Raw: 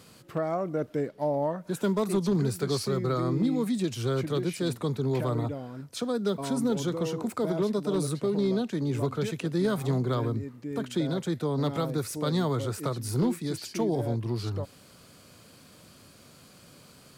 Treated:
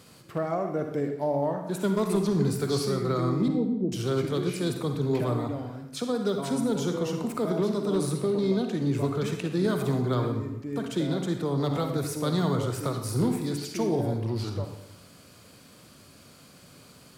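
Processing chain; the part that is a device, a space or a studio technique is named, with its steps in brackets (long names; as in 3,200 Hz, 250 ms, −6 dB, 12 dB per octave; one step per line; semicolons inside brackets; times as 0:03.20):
0:03.48–0:03.92: Butterworth low-pass 790 Hz 48 dB per octave
bathroom (convolution reverb RT60 0.85 s, pre-delay 42 ms, DRR 5 dB)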